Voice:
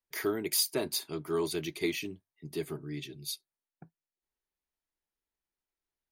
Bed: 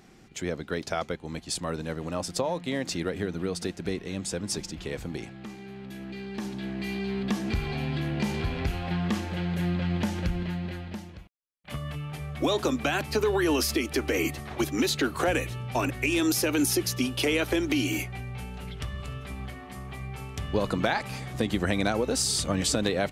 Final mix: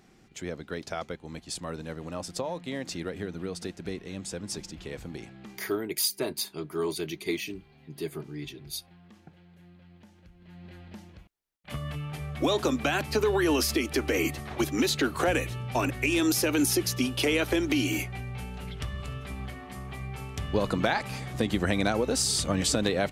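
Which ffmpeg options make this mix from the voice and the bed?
-filter_complex "[0:a]adelay=5450,volume=1.12[s0];[1:a]volume=12.6,afade=t=out:st=5.43:d=0.5:silence=0.0794328,afade=t=in:st=10.39:d=1.45:silence=0.0473151[s1];[s0][s1]amix=inputs=2:normalize=0"

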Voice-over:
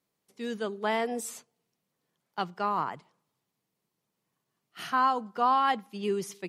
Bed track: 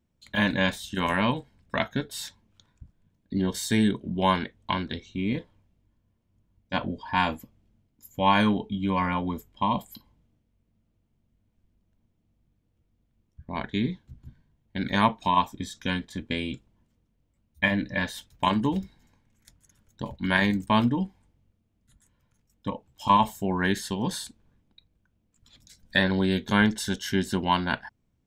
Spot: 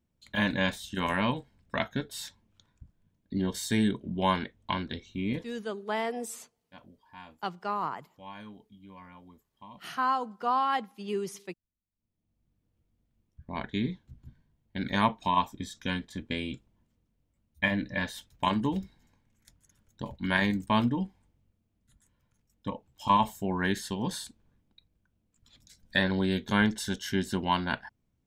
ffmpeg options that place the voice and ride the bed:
-filter_complex "[0:a]adelay=5050,volume=0.75[s0];[1:a]volume=7.08,afade=t=out:st=5.43:d=0.25:silence=0.0944061,afade=t=in:st=11.92:d=0.73:silence=0.0944061[s1];[s0][s1]amix=inputs=2:normalize=0"

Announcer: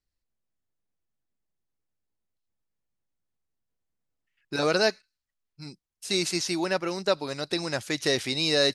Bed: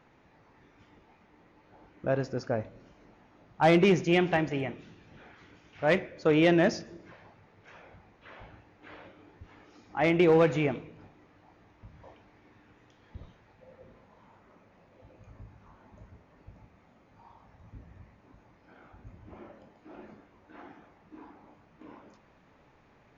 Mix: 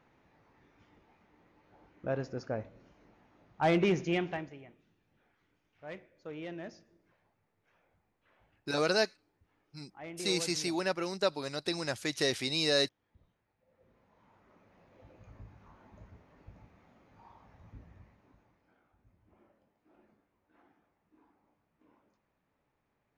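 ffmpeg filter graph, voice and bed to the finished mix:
-filter_complex "[0:a]adelay=4150,volume=0.562[s0];[1:a]volume=4.22,afade=t=out:st=4.06:d=0.52:silence=0.188365,afade=t=in:st=13.65:d=1.35:silence=0.125893,afade=t=out:st=17.61:d=1.23:silence=0.158489[s1];[s0][s1]amix=inputs=2:normalize=0"

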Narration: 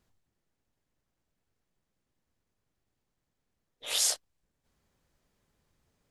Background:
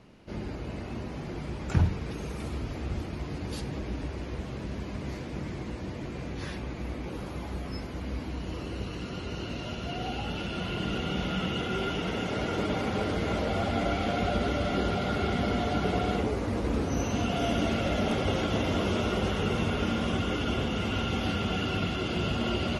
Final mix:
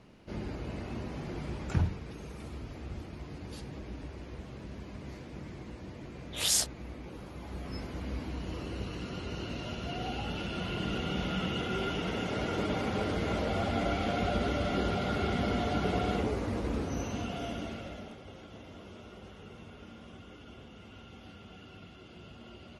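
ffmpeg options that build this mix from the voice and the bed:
-filter_complex "[0:a]adelay=2500,volume=1[s0];[1:a]volume=1.5,afade=t=out:st=1.54:d=0.49:silence=0.501187,afade=t=in:st=7.36:d=0.46:silence=0.530884,afade=t=out:st=16.31:d=1.86:silence=0.11885[s1];[s0][s1]amix=inputs=2:normalize=0"

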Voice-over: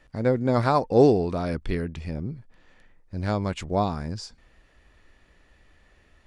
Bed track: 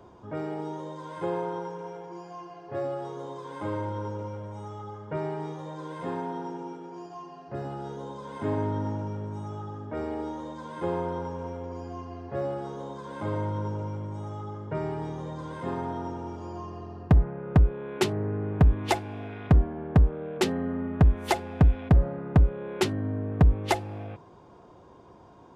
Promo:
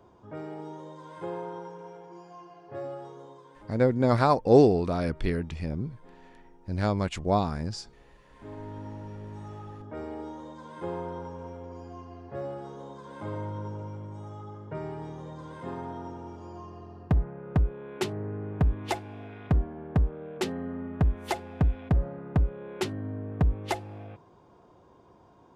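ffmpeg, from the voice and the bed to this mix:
-filter_complex "[0:a]adelay=3550,volume=0.944[s0];[1:a]volume=3.76,afade=t=out:st=2.93:d=0.81:silence=0.149624,afade=t=in:st=8.23:d=1.2:silence=0.141254[s1];[s0][s1]amix=inputs=2:normalize=0"

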